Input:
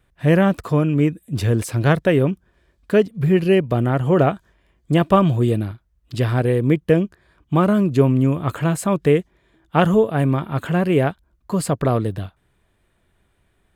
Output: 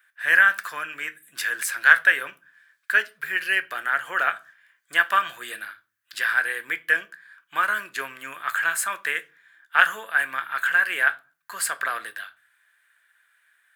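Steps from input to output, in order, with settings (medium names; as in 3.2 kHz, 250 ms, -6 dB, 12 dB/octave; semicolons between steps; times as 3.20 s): resonant high-pass 1.6 kHz, resonance Q 7.2; treble shelf 8.6 kHz +12 dB; reverberation RT60 0.35 s, pre-delay 6 ms, DRR 10 dB; trim -2.5 dB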